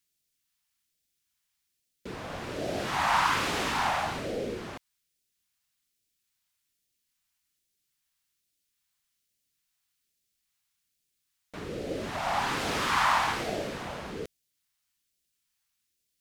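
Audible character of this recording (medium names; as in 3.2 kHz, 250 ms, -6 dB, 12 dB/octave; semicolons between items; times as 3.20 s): phasing stages 2, 1.2 Hz, lowest notch 400–1000 Hz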